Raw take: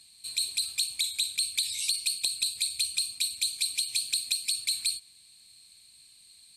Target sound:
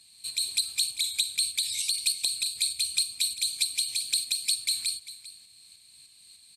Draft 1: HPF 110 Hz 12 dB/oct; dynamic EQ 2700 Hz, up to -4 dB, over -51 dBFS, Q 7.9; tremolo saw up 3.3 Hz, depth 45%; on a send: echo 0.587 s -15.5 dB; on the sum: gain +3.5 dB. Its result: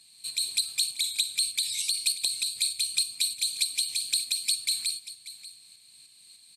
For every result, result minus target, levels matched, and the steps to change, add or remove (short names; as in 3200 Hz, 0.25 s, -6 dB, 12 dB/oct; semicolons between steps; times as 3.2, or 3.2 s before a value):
echo 0.19 s late; 125 Hz band -3.0 dB
change: echo 0.397 s -15.5 dB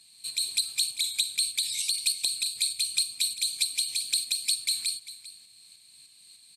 125 Hz band -3.0 dB
change: HPF 51 Hz 12 dB/oct